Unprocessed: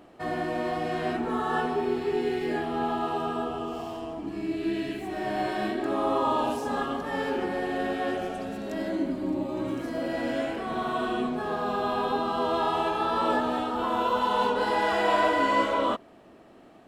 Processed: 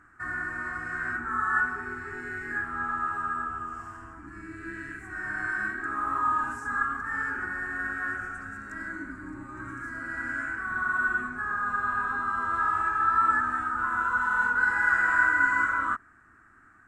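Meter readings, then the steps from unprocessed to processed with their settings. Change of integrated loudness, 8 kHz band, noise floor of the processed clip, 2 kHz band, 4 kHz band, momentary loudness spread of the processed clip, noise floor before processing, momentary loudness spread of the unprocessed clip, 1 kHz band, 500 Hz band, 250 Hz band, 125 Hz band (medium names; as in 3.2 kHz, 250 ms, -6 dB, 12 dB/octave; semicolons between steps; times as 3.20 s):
+0.5 dB, no reading, -57 dBFS, +10.0 dB, under -20 dB, 16 LU, -52 dBFS, 8 LU, -1.0 dB, -20.5 dB, -12.5 dB, -5.0 dB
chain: FFT filter 100 Hz 0 dB, 170 Hz -14 dB, 300 Hz -13 dB, 580 Hz -29 dB, 950 Hz -10 dB, 1.5 kHz +13 dB, 3.2 kHz -26 dB, 4.6 kHz -18 dB, 7.8 kHz -1 dB, 13 kHz -18 dB; trim +1.5 dB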